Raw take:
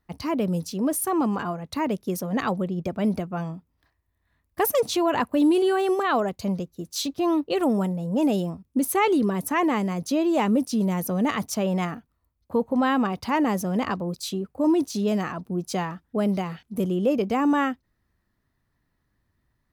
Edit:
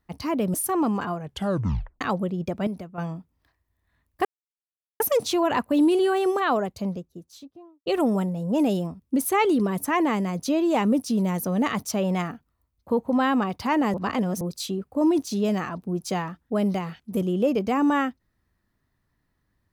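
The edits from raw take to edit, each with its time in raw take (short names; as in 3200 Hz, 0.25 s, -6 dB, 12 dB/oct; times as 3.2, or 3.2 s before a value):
0.54–0.92 cut
1.57 tape stop 0.82 s
3.05–3.36 gain -8.5 dB
4.63 insert silence 0.75 s
6.06–7.49 studio fade out
13.57–14.04 reverse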